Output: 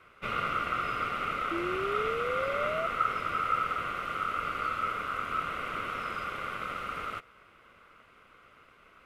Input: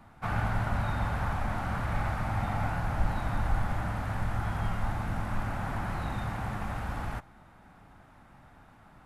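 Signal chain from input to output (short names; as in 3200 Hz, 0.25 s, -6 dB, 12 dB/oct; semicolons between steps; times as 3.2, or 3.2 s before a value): ring modulator 1300 Hz; painted sound rise, 1.51–2.87, 330–670 Hz -34 dBFS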